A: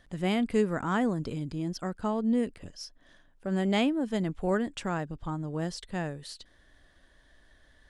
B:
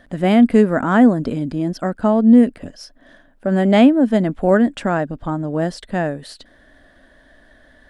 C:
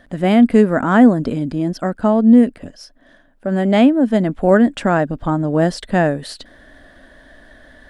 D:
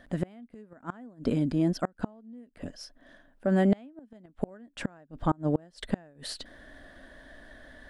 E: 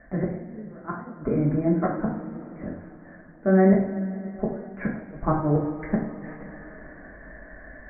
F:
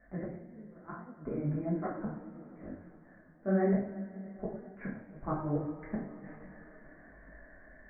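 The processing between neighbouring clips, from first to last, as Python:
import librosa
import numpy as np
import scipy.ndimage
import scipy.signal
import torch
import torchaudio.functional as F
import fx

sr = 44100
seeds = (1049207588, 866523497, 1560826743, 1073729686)

y1 = fx.graphic_eq_15(x, sr, hz=(250, 630, 1600, 6300), db=(11, 10, 6, -4))
y1 = F.gain(torch.from_numpy(y1), 6.5).numpy()
y2 = fx.rider(y1, sr, range_db=4, speed_s=2.0)
y2 = F.gain(torch.from_numpy(y2), 1.5).numpy()
y3 = fx.gate_flip(y2, sr, shuts_db=-9.0, range_db=-32)
y3 = F.gain(torch.from_numpy(y3), -5.5).numpy()
y4 = scipy.signal.sosfilt(scipy.signal.butter(16, 2200.0, 'lowpass', fs=sr, output='sos'), y3)
y4 = fx.rev_double_slope(y4, sr, seeds[0], early_s=0.52, late_s=4.2, knee_db=-18, drr_db=-5.0)
y5 = fx.detune_double(y4, sr, cents=38)
y5 = F.gain(torch.from_numpy(y5), -7.5).numpy()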